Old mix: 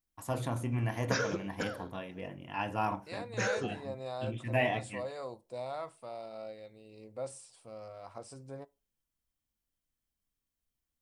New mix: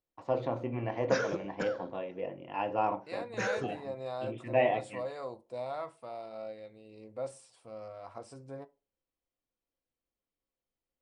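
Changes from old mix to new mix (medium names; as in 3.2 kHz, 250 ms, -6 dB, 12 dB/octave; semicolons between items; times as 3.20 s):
first voice: add cabinet simulation 160–4500 Hz, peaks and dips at 210 Hz -4 dB, 370 Hz +5 dB, 530 Hz +10 dB, 780 Hz +3 dB, 1.6 kHz -6 dB, 3.4 kHz -4 dB; second voice: send +7.0 dB; master: add treble shelf 5.3 kHz -8.5 dB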